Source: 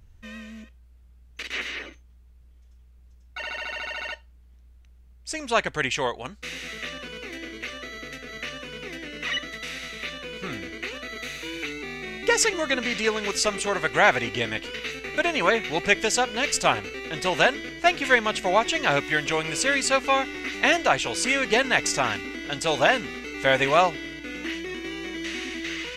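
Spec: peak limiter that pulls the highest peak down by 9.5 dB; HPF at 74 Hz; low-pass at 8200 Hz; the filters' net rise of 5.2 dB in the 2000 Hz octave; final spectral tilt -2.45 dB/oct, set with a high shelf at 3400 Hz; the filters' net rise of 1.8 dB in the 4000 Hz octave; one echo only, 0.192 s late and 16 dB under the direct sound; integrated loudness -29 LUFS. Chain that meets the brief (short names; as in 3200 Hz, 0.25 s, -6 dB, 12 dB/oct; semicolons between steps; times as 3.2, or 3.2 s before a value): HPF 74 Hz; LPF 8200 Hz; bell 2000 Hz +7.5 dB; high shelf 3400 Hz -7 dB; bell 4000 Hz +4 dB; limiter -9.5 dBFS; echo 0.192 s -16 dB; gain -5 dB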